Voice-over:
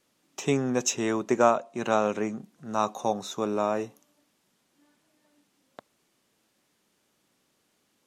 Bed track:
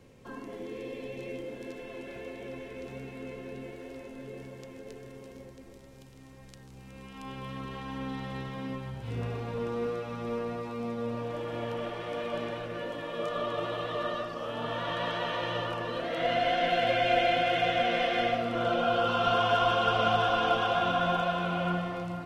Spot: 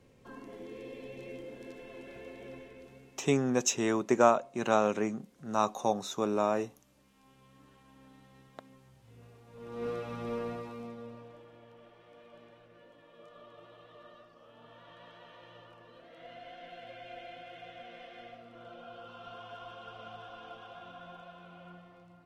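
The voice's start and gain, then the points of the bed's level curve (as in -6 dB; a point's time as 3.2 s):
2.80 s, -2.0 dB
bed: 2.54 s -5.5 dB
3.44 s -21.5 dB
9.46 s -21.5 dB
9.88 s -2.5 dB
10.48 s -2.5 dB
11.61 s -21.5 dB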